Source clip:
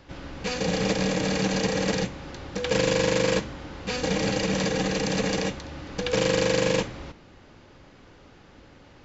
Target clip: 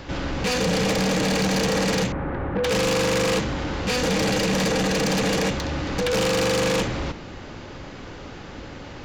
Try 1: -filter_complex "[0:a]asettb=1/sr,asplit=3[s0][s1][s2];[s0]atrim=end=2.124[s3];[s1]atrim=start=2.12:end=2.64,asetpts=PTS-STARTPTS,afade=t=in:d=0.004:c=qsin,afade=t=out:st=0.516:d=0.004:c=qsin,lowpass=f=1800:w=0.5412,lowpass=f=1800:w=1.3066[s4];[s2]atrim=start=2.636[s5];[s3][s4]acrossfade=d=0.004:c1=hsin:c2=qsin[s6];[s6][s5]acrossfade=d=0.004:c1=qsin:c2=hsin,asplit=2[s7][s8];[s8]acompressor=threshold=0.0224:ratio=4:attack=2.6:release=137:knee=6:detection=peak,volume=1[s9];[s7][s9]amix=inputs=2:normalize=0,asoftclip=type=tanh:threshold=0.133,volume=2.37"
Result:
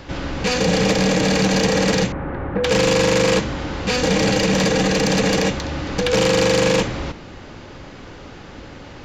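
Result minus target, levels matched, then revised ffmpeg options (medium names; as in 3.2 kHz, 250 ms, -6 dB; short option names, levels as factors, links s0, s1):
saturation: distortion -8 dB
-filter_complex "[0:a]asettb=1/sr,asplit=3[s0][s1][s2];[s0]atrim=end=2.124[s3];[s1]atrim=start=2.12:end=2.64,asetpts=PTS-STARTPTS,afade=t=in:d=0.004:c=qsin,afade=t=out:st=0.516:d=0.004:c=qsin,lowpass=f=1800:w=0.5412,lowpass=f=1800:w=1.3066[s4];[s2]atrim=start=2.636[s5];[s3][s4]acrossfade=d=0.004:c1=hsin:c2=qsin[s6];[s6][s5]acrossfade=d=0.004:c1=qsin:c2=hsin,asplit=2[s7][s8];[s8]acompressor=threshold=0.0224:ratio=4:attack=2.6:release=137:knee=6:detection=peak,volume=1[s9];[s7][s9]amix=inputs=2:normalize=0,asoftclip=type=tanh:threshold=0.0473,volume=2.37"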